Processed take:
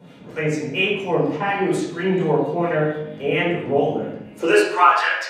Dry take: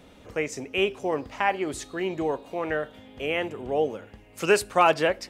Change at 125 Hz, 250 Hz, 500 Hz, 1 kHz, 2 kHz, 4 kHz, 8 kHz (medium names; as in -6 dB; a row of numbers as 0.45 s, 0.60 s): +13.0 dB, +9.0 dB, +5.5 dB, +6.5 dB, +7.0 dB, +5.5 dB, -0.5 dB